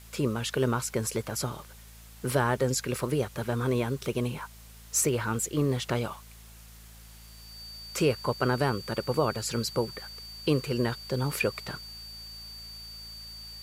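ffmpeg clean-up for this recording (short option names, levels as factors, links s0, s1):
-af "adeclick=t=4,bandreject=f=55.4:t=h:w=4,bandreject=f=110.8:t=h:w=4,bandreject=f=166.2:t=h:w=4,bandreject=f=221.6:t=h:w=4,bandreject=f=4600:w=30,afftdn=nr=25:nf=-49"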